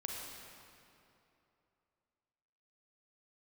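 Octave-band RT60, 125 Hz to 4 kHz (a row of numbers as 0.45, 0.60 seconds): 2.9, 2.9, 3.0, 2.8, 2.4, 2.0 seconds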